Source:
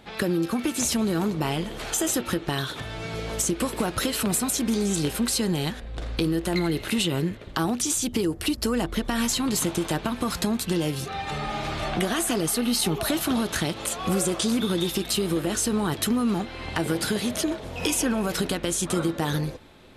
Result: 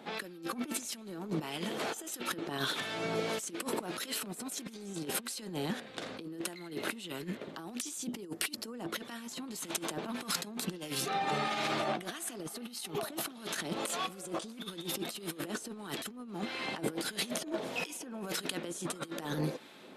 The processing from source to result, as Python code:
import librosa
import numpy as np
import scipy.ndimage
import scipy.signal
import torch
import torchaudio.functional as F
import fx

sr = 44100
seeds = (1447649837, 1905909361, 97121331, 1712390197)

y = scipy.signal.sosfilt(scipy.signal.butter(4, 180.0, 'highpass', fs=sr, output='sos'), x)
y = fx.over_compress(y, sr, threshold_db=-31.0, ratio=-0.5)
y = fx.harmonic_tremolo(y, sr, hz=1.6, depth_pct=50, crossover_hz=1300.0)
y = y * 10.0 ** (-3.5 / 20.0)